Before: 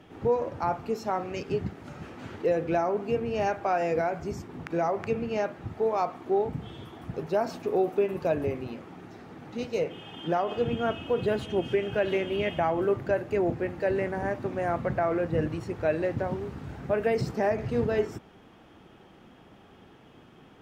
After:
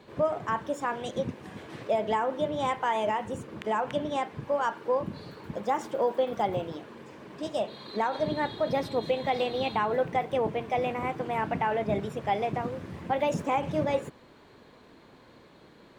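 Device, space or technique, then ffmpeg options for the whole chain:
nightcore: -af "asetrate=56889,aresample=44100,volume=-1dB"

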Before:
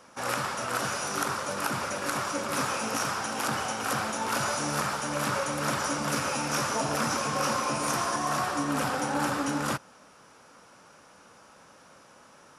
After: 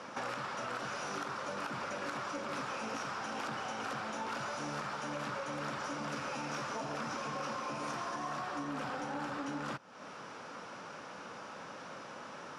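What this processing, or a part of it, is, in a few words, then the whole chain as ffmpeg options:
AM radio: -af "highpass=120,lowpass=4.5k,acompressor=threshold=-45dB:ratio=6,asoftclip=type=tanh:threshold=-36.5dB,volume=8dB"

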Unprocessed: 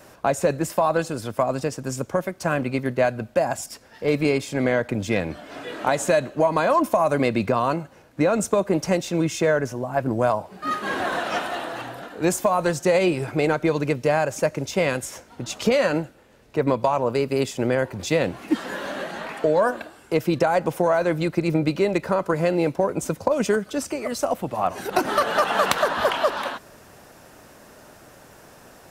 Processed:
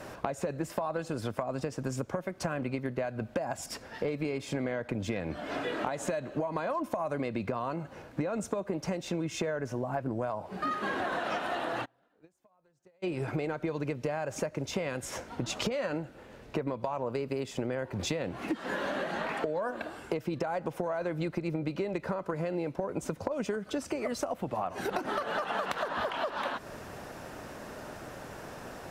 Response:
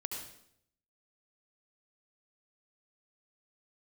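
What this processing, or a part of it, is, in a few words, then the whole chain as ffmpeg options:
serial compression, leveller first: -filter_complex "[0:a]aemphasis=mode=reproduction:type=cd,acompressor=threshold=-24dB:ratio=2.5,acompressor=threshold=-35dB:ratio=5,asplit=3[a][b][c];[a]afade=t=out:st=11.84:d=0.02[d];[b]agate=range=-36dB:threshold=-30dB:ratio=16:detection=peak,afade=t=in:st=11.84:d=0.02,afade=t=out:st=13.02:d=0.02[e];[c]afade=t=in:st=13.02:d=0.02[f];[d][e][f]amix=inputs=3:normalize=0,volume=4.5dB"

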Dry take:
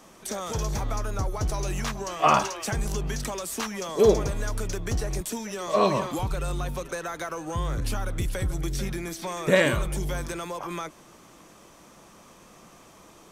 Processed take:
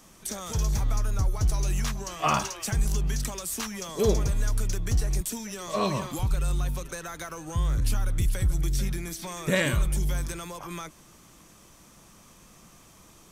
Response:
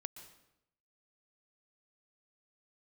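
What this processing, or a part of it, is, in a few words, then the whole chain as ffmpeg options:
smiley-face EQ: -af "lowshelf=f=170:g=8.5,equalizer=f=520:t=o:w=2.2:g=-5,highshelf=f=5.5k:g=7,volume=-3dB"

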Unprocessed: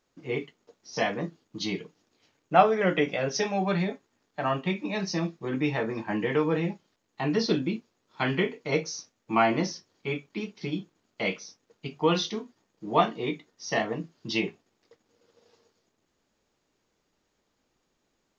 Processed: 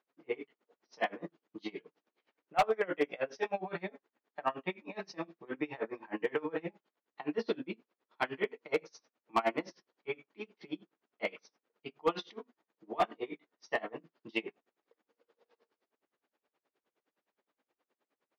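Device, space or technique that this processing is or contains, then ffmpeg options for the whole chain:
helicopter radio: -af "highpass=350,lowpass=2.6k,aeval=exprs='val(0)*pow(10,-27*(0.5-0.5*cos(2*PI*9.6*n/s))/20)':c=same,asoftclip=type=hard:threshold=-20.5dB"

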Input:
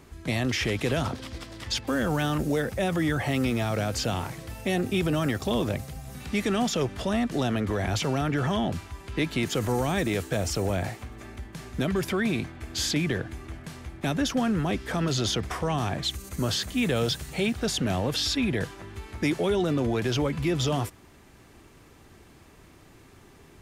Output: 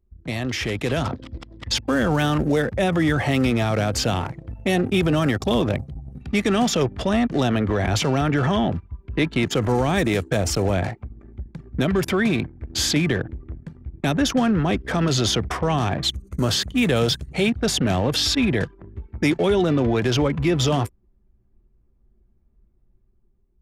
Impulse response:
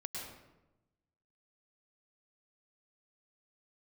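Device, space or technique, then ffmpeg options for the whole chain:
voice memo with heavy noise removal: -filter_complex "[0:a]asettb=1/sr,asplit=3[a][b][c];[a]atrim=end=8.514[d];[b]atrim=start=8.51:end=9.94,asetpts=PTS-STARTPTS,afade=t=in:d=0.004:c=qsin,afade=t=out:st=1.426:d=0.004:c=qsin,highshelf=f=5.7k:g=-4.5[e];[c]atrim=start=9.936[f];[d][e]acrossfade=d=0.004:c1=hsin:c2=qsin[g];[g][f]acrossfade=d=0.004:c1=qsin:c2=hsin,anlmdn=3.98,dynaudnorm=f=390:g=5:m=6dB"

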